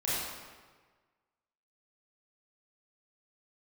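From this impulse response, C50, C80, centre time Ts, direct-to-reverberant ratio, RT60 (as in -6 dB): -4.0 dB, -0.5 dB, 113 ms, -9.5 dB, 1.4 s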